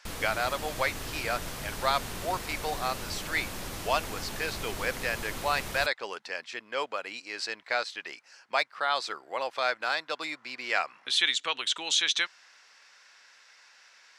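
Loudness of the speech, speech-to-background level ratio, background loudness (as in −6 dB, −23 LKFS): −30.5 LKFS, 7.0 dB, −37.5 LKFS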